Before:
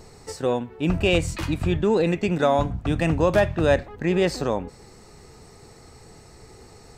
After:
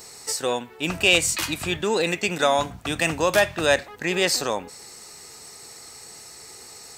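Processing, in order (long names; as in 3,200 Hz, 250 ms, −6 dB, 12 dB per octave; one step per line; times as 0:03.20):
spectral tilt +4 dB per octave
level +2 dB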